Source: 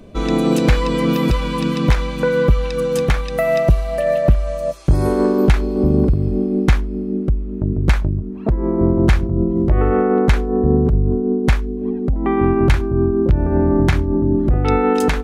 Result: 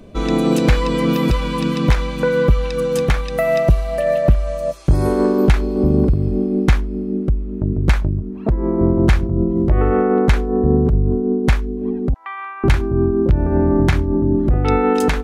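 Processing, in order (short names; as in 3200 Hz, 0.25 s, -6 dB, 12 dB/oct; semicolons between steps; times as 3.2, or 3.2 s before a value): 12.14–12.64 HPF 1100 Hz 24 dB/oct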